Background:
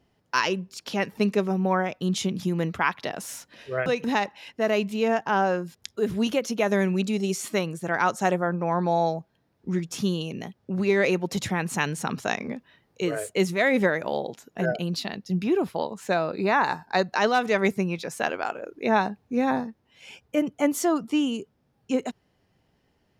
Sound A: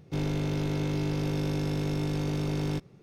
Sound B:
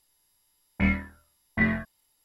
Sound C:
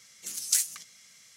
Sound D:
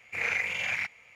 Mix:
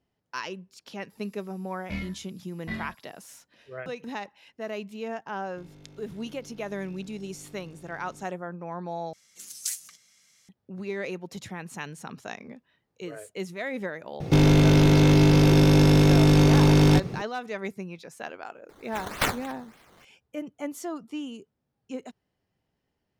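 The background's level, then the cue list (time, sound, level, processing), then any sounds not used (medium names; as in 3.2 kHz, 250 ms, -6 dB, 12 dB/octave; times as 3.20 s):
background -11 dB
1.10 s: add B -10 dB + resonant high shelf 2.9 kHz +12.5 dB, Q 1.5
5.45 s: add A -16.5 dB + compression 3:1, threshold -32 dBFS
9.13 s: replace with C -6.5 dB
14.20 s: add A -9 dB + loudness maximiser +29 dB
18.69 s: add C -0.5 dB + decimation with a swept rate 12× 3.4 Hz
not used: D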